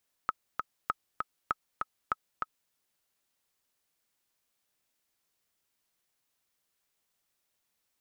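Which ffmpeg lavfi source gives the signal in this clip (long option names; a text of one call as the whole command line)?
ffmpeg -f lavfi -i "aevalsrc='pow(10,(-14.5-3.5*gte(mod(t,2*60/197),60/197))/20)*sin(2*PI*1280*mod(t,60/197))*exp(-6.91*mod(t,60/197)/0.03)':duration=2.43:sample_rate=44100" out.wav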